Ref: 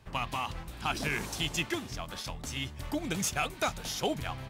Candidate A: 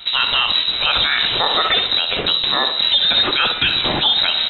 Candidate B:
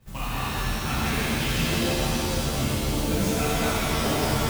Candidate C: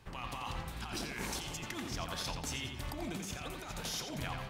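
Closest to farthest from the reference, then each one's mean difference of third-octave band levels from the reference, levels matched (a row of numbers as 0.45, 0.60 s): C, B, A; 6.0, 8.5, 15.5 dB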